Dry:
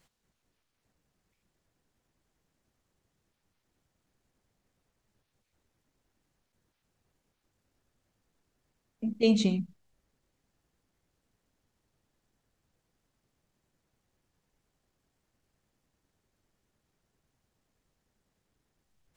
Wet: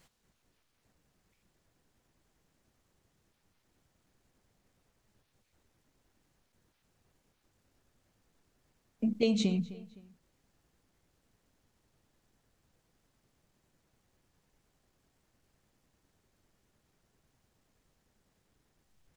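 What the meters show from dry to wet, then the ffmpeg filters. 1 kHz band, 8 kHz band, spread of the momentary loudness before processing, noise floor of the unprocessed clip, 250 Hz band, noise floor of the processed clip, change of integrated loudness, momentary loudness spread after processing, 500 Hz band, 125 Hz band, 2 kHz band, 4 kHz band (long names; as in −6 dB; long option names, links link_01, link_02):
can't be measured, −2.5 dB, 13 LU, −81 dBFS, −2.5 dB, −77 dBFS, −3.0 dB, 14 LU, −3.5 dB, −2.0 dB, −3.0 dB, −3.0 dB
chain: -filter_complex "[0:a]asplit=2[link_01][link_02];[link_02]adelay=257,lowpass=frequency=3900:poles=1,volume=-24dB,asplit=2[link_03][link_04];[link_04]adelay=257,lowpass=frequency=3900:poles=1,volume=0.39[link_05];[link_03][link_05]amix=inputs=2:normalize=0[link_06];[link_01][link_06]amix=inputs=2:normalize=0,acompressor=threshold=-29dB:ratio=6,volume=4dB"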